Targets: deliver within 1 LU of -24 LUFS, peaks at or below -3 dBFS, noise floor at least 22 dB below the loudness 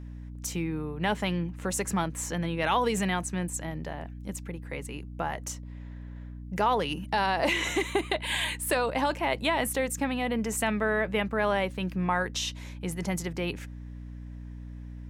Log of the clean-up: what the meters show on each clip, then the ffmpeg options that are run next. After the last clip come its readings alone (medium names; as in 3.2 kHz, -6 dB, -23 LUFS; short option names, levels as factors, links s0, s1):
hum 60 Hz; highest harmonic 300 Hz; hum level -39 dBFS; loudness -29.5 LUFS; peak level -13.5 dBFS; loudness target -24.0 LUFS
-> -af "bandreject=f=60:t=h:w=6,bandreject=f=120:t=h:w=6,bandreject=f=180:t=h:w=6,bandreject=f=240:t=h:w=6,bandreject=f=300:t=h:w=6"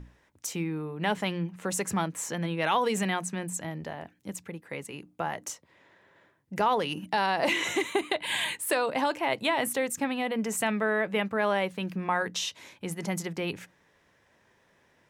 hum not found; loudness -29.5 LUFS; peak level -13.5 dBFS; loudness target -24.0 LUFS
-> -af "volume=1.88"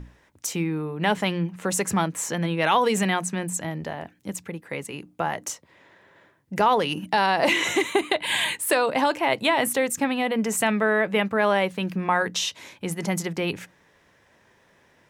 loudness -24.0 LUFS; peak level -8.0 dBFS; noise floor -61 dBFS